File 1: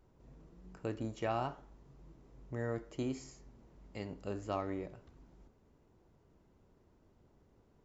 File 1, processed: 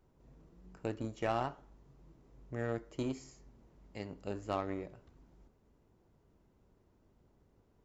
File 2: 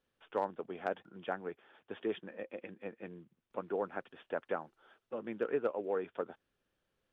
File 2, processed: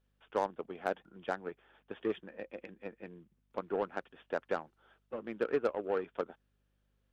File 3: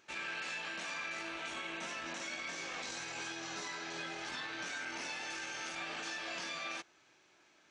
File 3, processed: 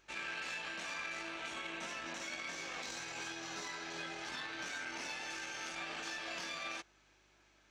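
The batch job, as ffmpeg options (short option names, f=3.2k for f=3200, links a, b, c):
-af "aeval=exprs='val(0)+0.000224*(sin(2*PI*50*n/s)+sin(2*PI*2*50*n/s)/2+sin(2*PI*3*50*n/s)/3+sin(2*PI*4*50*n/s)/4+sin(2*PI*5*50*n/s)/5)':c=same,aeval=exprs='0.0841*(cos(1*acos(clip(val(0)/0.0841,-1,1)))-cos(1*PI/2))+0.00473*(cos(7*acos(clip(val(0)/0.0841,-1,1)))-cos(7*PI/2))':c=same,volume=2dB"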